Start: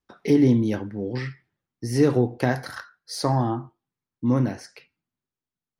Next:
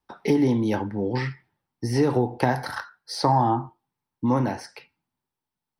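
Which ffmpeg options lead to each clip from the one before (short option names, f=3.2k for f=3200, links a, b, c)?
-filter_complex "[0:a]bandreject=f=6.8k:w=5.1,acrossover=split=350|6500[a][b][c];[a]acompressor=threshold=-26dB:ratio=4[d];[b]acompressor=threshold=-26dB:ratio=4[e];[c]acompressor=threshold=-50dB:ratio=4[f];[d][e][f]amix=inputs=3:normalize=0,equalizer=f=880:t=o:w=0.37:g=11.5,volume=3dB"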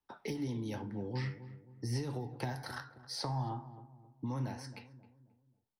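-filter_complex "[0:a]acrossover=split=140|3000[a][b][c];[b]acompressor=threshold=-32dB:ratio=4[d];[a][d][c]amix=inputs=3:normalize=0,flanger=delay=6.5:depth=9.9:regen=73:speed=0.46:shape=triangular,asplit=2[e][f];[f]adelay=267,lowpass=f=820:p=1,volume=-12.5dB,asplit=2[g][h];[h]adelay=267,lowpass=f=820:p=1,volume=0.43,asplit=2[i][j];[j]adelay=267,lowpass=f=820:p=1,volume=0.43,asplit=2[k][l];[l]adelay=267,lowpass=f=820:p=1,volume=0.43[m];[e][g][i][k][m]amix=inputs=5:normalize=0,volume=-4dB"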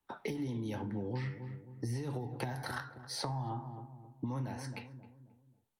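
-af "equalizer=f=5.1k:w=4.1:g=-8.5,acompressor=threshold=-39dB:ratio=10,volume=5.5dB" -ar 48000 -c:a libvorbis -b:a 128k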